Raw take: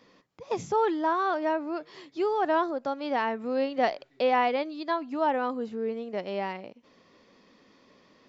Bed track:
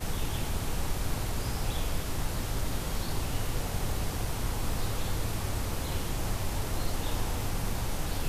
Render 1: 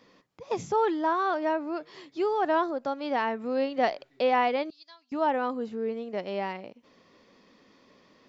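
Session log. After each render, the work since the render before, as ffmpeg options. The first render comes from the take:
ffmpeg -i in.wav -filter_complex "[0:a]asettb=1/sr,asplit=3[link_01][link_02][link_03];[link_01]atrim=end=4.704[link_04];[link_02]atrim=start=4.7:end=5.12,asetpts=PTS-STARTPTS,afade=type=in:duration=0.004:curve=qsin,afade=type=out:start_time=0.416:duration=0.004:curve=qsin,bandpass=frequency=5400:width_type=q:width=3.5[link_05];[link_03]atrim=start=5.116[link_06];[link_04][link_05]acrossfade=duration=0.004:curve1=hsin:curve2=qsin[link_07];[link_07][link_06]acrossfade=duration=0.004:curve1=qsin:curve2=hsin" out.wav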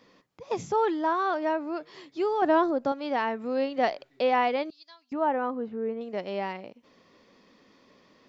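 ffmpeg -i in.wav -filter_complex "[0:a]asettb=1/sr,asplit=3[link_01][link_02][link_03];[link_01]atrim=end=2.424[link_04];[link_02]atrim=start=2.42:end=2.92,asetpts=PTS-STARTPTS,afade=type=in:duration=0.004:curve=qsin,afade=type=out:start_time=0.496:duration=0.004:curve=qsin,lowshelf=frequency=480:gain=8.5[link_05];[link_03]atrim=start=2.916[link_06];[link_04][link_05]acrossfade=duration=0.004:curve1=hsin:curve2=qsin[link_07];[link_07][link_06]acrossfade=duration=0.004:curve1=qsin:curve2=hsin,asettb=1/sr,asplit=3[link_08][link_09][link_10];[link_08]atrim=end=5.134[link_11];[link_09]atrim=start=5.13:end=6.01,asetpts=PTS-STARTPTS,afade=type=in:duration=0.004:curve=qsin,afade=type=out:start_time=0.876:duration=0.004:curve=qsin,lowpass=2000[link_12];[link_10]atrim=start=6.006[link_13];[link_11][link_12]acrossfade=duration=0.004:curve1=hsin:curve2=qsin[link_14];[link_14][link_13]acrossfade=duration=0.004:curve1=qsin:curve2=hsin" out.wav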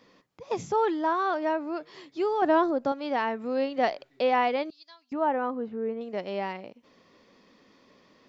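ffmpeg -i in.wav -af anull out.wav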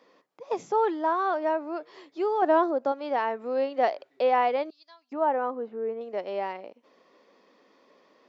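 ffmpeg -i in.wav -af "highpass=460,tiltshelf=frequency=1200:gain=5.5" out.wav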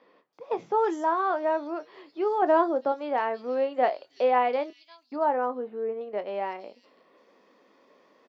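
ffmpeg -i in.wav -filter_complex "[0:a]asplit=2[link_01][link_02];[link_02]adelay=24,volume=-12dB[link_03];[link_01][link_03]amix=inputs=2:normalize=0,acrossover=split=4400[link_04][link_05];[link_05]adelay=330[link_06];[link_04][link_06]amix=inputs=2:normalize=0" out.wav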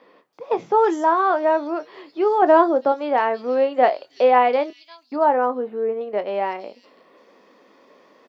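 ffmpeg -i in.wav -af "volume=7.5dB" out.wav

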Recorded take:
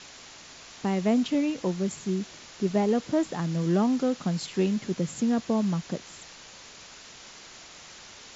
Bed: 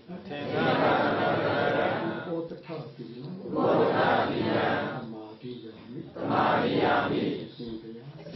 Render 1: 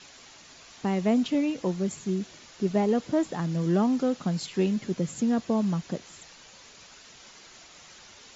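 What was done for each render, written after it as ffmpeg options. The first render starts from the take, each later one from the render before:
ffmpeg -i in.wav -af "afftdn=noise_reduction=6:noise_floor=-48" out.wav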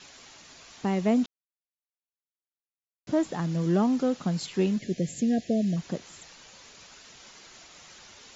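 ffmpeg -i in.wav -filter_complex "[0:a]asplit=3[link_01][link_02][link_03];[link_01]afade=type=out:start_time=4.78:duration=0.02[link_04];[link_02]asuperstop=centerf=1100:order=20:qfactor=1.2,afade=type=in:start_time=4.78:duration=0.02,afade=type=out:start_time=5.76:duration=0.02[link_05];[link_03]afade=type=in:start_time=5.76:duration=0.02[link_06];[link_04][link_05][link_06]amix=inputs=3:normalize=0,asplit=3[link_07][link_08][link_09];[link_07]atrim=end=1.26,asetpts=PTS-STARTPTS,afade=type=out:start_time=1.256:duration=0.004:curve=hsin[link_10];[link_08]atrim=start=1.26:end=3.07,asetpts=PTS-STARTPTS,volume=0[link_11];[link_09]atrim=start=3.07,asetpts=PTS-STARTPTS,afade=type=in:duration=0.004:curve=hsin[link_12];[link_10][link_11][link_12]concat=n=3:v=0:a=1" out.wav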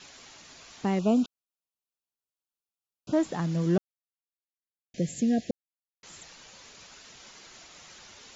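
ffmpeg -i in.wav -filter_complex "[0:a]asettb=1/sr,asplit=3[link_01][link_02][link_03];[link_01]atrim=end=0.994[link_04];[link_02]atrim=start=0.99:end=3.13,asetpts=PTS-STARTPTS,afade=type=in:duration=0.004:curve=qsin,afade=type=out:start_time=2.136:duration=0.004:curve=qsin,asuperstop=centerf=1900:order=12:qfactor=2.1[link_05];[link_03]atrim=start=3.126[link_06];[link_04][link_05]acrossfade=duration=0.004:curve1=hsin:curve2=qsin[link_07];[link_07][link_06]acrossfade=duration=0.004:curve1=qsin:curve2=hsin,asplit=5[link_08][link_09][link_10][link_11][link_12];[link_08]atrim=end=3.78,asetpts=PTS-STARTPTS,afade=type=out:start_time=3.776:duration=0.004:curve=hsin[link_13];[link_09]atrim=start=3.78:end=4.94,asetpts=PTS-STARTPTS,volume=0[link_14];[link_10]atrim=start=4.94:end=5.51,asetpts=PTS-STARTPTS,afade=type=in:duration=0.004:curve=hsin,afade=type=out:start_time=0.566:duration=0.004:curve=hsin[link_15];[link_11]atrim=start=5.51:end=6.03,asetpts=PTS-STARTPTS,volume=0[link_16];[link_12]atrim=start=6.03,asetpts=PTS-STARTPTS,afade=type=in:duration=0.004:curve=hsin[link_17];[link_13][link_14][link_15][link_16][link_17]concat=n=5:v=0:a=1" out.wav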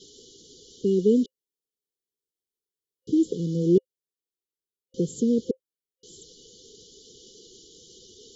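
ffmpeg -i in.wav -af "afftfilt=real='re*(1-between(b*sr/4096,520,2900))':imag='im*(1-between(b*sr/4096,520,2900))':win_size=4096:overlap=0.75,equalizer=frequency=410:width_type=o:width=0.66:gain=12" out.wav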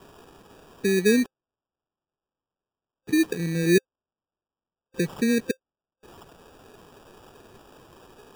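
ffmpeg -i in.wav -af "acrusher=samples=21:mix=1:aa=0.000001" out.wav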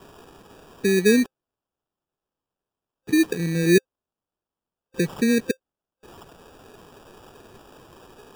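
ffmpeg -i in.wav -af "volume=2.5dB" out.wav

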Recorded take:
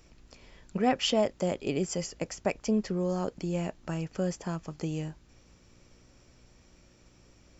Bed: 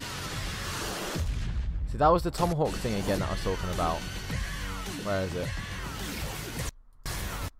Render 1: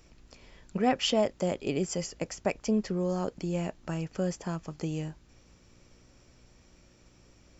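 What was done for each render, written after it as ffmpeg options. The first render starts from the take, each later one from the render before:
ffmpeg -i in.wav -af anull out.wav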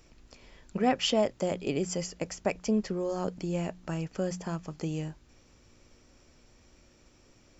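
ffmpeg -i in.wav -af "bandreject=frequency=60:width_type=h:width=4,bandreject=frequency=120:width_type=h:width=4,bandreject=frequency=180:width_type=h:width=4" out.wav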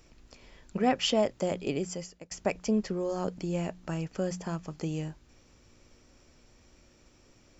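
ffmpeg -i in.wav -filter_complex "[0:a]asplit=2[link_01][link_02];[link_01]atrim=end=2.31,asetpts=PTS-STARTPTS,afade=type=out:start_time=1.66:duration=0.65:silence=0.0944061[link_03];[link_02]atrim=start=2.31,asetpts=PTS-STARTPTS,afade=type=in:duration=0.004:curve=hsin:silence=0.0944061[link_04];[link_03][link_04]concat=n=2:v=0:a=1" out.wav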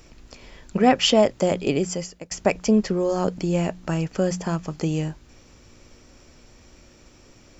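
ffmpeg -i in.wav -af "volume=9dB" out.wav

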